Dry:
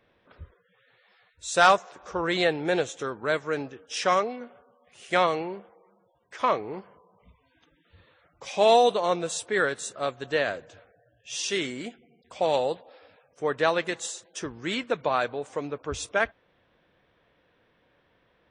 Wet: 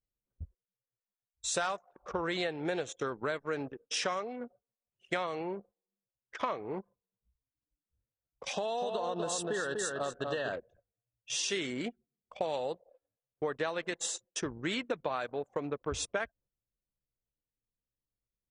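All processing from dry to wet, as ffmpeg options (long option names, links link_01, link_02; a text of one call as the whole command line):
ffmpeg -i in.wav -filter_complex "[0:a]asettb=1/sr,asplit=3[link_01][link_02][link_03];[link_01]atrim=end=8.534[link_04];[link_02]atrim=start=8.53:end=10.53,asetpts=PTS-STARTPTS,afade=type=in:duration=0.004:curve=qsin,afade=type=out:start_time=1.996:duration=0.004:curve=qsin,asuperstop=centerf=2200:order=20:qfactor=3.1,acompressor=threshold=-27dB:ratio=6:attack=3.2:release=140:knee=1:detection=peak,asplit=2[link_05][link_06];[link_06]adelay=246,lowpass=frequency=3400:poles=1,volume=-4dB,asplit=2[link_07][link_08];[link_08]adelay=246,lowpass=frequency=3400:poles=1,volume=0.26,asplit=2[link_09][link_10];[link_10]adelay=246,lowpass=frequency=3400:poles=1,volume=0.26,asplit=2[link_11][link_12];[link_12]adelay=246,lowpass=frequency=3400:poles=1,volume=0.26[link_13];[link_05][link_07][link_09][link_11][link_13]amix=inputs=5:normalize=0,atrim=end_sample=88200[link_14];[link_03]atrim=start=10.526[link_15];[link_04][link_14]acrossfade=duration=0.004:curve1=hsin:curve2=qsin[link_16];[link_16][link_15]acrossfade=duration=0.004:curve1=qsin:curve2=hsin,agate=range=-10dB:threshold=-51dB:ratio=16:detection=peak,anlmdn=0.398,acompressor=threshold=-31dB:ratio=10,volume=1dB" out.wav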